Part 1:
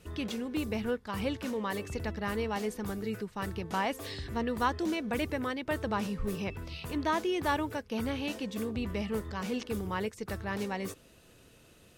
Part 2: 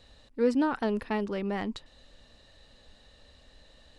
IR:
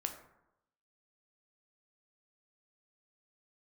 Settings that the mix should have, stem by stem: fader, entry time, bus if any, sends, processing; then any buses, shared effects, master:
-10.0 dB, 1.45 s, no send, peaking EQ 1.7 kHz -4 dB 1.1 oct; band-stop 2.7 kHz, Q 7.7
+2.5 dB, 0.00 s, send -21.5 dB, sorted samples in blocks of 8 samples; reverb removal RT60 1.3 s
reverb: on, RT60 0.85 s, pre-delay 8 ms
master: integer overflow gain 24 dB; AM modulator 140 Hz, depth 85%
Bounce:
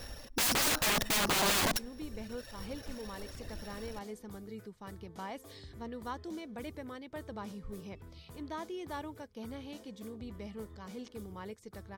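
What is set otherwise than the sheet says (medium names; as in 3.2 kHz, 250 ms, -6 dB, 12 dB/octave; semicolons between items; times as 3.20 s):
stem 2 +2.5 dB -> +11.5 dB; master: missing AM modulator 140 Hz, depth 85%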